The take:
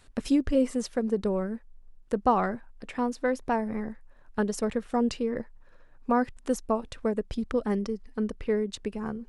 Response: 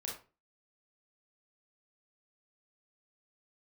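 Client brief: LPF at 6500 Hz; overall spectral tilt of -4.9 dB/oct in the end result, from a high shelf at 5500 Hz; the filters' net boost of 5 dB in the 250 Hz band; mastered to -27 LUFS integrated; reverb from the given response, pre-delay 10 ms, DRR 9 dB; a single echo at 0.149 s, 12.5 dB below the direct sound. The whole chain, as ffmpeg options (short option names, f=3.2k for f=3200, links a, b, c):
-filter_complex "[0:a]lowpass=6.5k,equalizer=f=250:t=o:g=5.5,highshelf=f=5.5k:g=3.5,aecho=1:1:149:0.237,asplit=2[a][b];[1:a]atrim=start_sample=2205,adelay=10[c];[b][c]afir=irnorm=-1:irlink=0,volume=-8.5dB[d];[a][d]amix=inputs=2:normalize=0,volume=-1.5dB"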